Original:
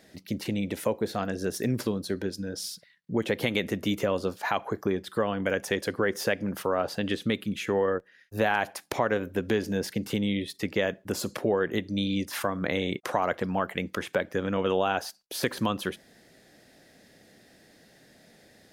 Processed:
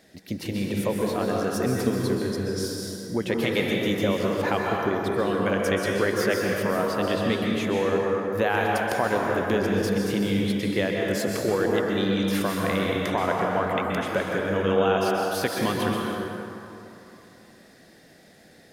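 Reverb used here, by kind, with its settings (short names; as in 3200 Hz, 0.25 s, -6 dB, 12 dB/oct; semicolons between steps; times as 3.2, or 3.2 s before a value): plate-style reverb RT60 3 s, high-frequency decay 0.5×, pre-delay 0.115 s, DRR -2 dB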